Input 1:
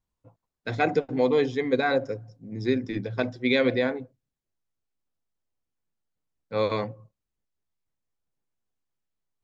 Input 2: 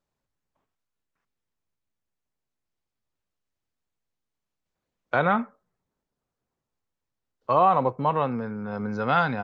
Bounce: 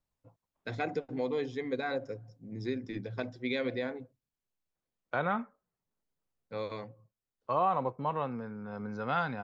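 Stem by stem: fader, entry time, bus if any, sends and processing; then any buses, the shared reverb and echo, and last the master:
-5.0 dB, 0.00 s, no send, compression 1.5:1, threshold -34 dBFS, peak gain reduction 6 dB; auto duck -11 dB, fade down 1.10 s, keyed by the second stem
-9.0 dB, 0.00 s, no send, none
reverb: none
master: none

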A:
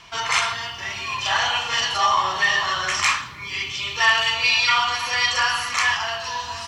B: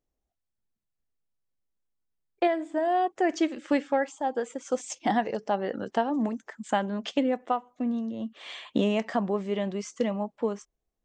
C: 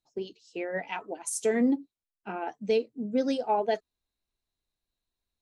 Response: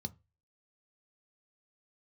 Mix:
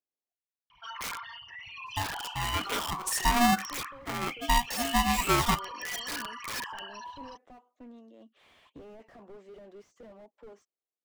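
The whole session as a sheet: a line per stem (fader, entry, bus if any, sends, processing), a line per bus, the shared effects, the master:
-15.0 dB, 0.70 s, no send, resonances exaggerated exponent 3; integer overflow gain 15 dB
-13.0 dB, 0.00 s, no send, high-pass 290 Hz 24 dB/octave; slew-rate limiter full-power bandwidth 10 Hz
+1.0 dB, 1.80 s, no send, polarity switched at an audio rate 480 Hz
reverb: none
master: none

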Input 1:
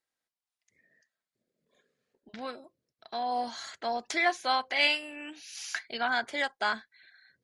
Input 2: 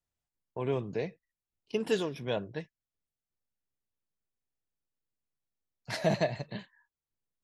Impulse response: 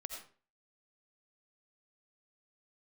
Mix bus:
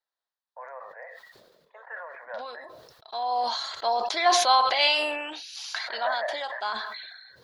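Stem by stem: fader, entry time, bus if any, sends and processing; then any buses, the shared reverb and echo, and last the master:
2.81 s -9.5 dB -> 3.59 s -1 dB -> 5.68 s -1 dB -> 6.20 s -9 dB, 0.00 s, send -23 dB, ten-band graphic EQ 125 Hz -4 dB, 250 Hz -11 dB, 500 Hz +5 dB, 1 kHz +11 dB, 2 kHz -6 dB, 4 kHz +11 dB, 8 kHz -7 dB
+0.5 dB, 0.00 s, no send, Chebyshev band-pass 530–1900 Hz, order 5; tilt EQ +4.5 dB/octave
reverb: on, RT60 0.40 s, pre-delay 45 ms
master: decay stretcher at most 38 dB/s

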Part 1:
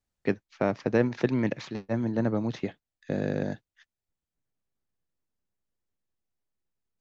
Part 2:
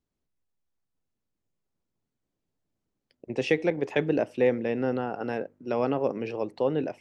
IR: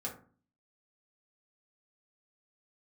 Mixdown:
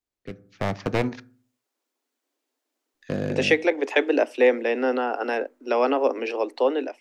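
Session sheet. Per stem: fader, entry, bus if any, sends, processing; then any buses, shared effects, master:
-8.0 dB, 0.00 s, muted 1.20–2.94 s, send -13 dB, one-sided wavefolder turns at -23 dBFS; bass shelf 430 Hz +7 dB; rotary cabinet horn 0.9 Hz
-2.0 dB, 0.00 s, no send, steep high-pass 240 Hz 96 dB/octave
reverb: on, RT60 0.40 s, pre-delay 3 ms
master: bass shelf 460 Hz -10 dB; level rider gain up to 12 dB

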